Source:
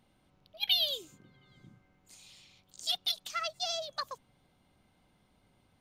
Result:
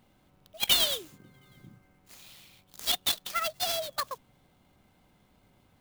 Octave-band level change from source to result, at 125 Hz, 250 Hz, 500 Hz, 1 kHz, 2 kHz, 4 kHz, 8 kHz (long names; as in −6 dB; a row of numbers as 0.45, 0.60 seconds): +8.5, +10.0, +5.0, +5.0, +6.0, +2.5, +10.5 decibels